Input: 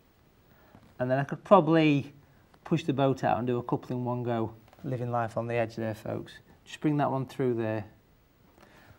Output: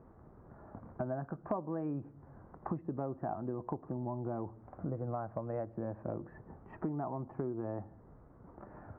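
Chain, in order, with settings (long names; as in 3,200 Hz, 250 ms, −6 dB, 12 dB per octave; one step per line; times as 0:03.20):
inverse Chebyshev low-pass filter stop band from 3,300 Hz, stop band 50 dB
downward compressor 6 to 1, threshold −41 dBFS, peak gain reduction 25 dB
level +5.5 dB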